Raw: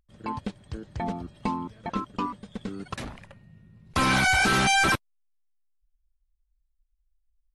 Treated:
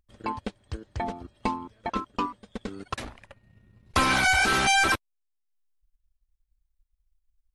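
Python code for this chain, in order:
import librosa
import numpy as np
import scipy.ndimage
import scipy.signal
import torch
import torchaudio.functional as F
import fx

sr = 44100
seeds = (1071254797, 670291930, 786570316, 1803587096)

y = fx.peak_eq(x, sr, hz=160.0, db=-12.0, octaves=0.7)
y = fx.transient(y, sr, attack_db=4, sustain_db=-7)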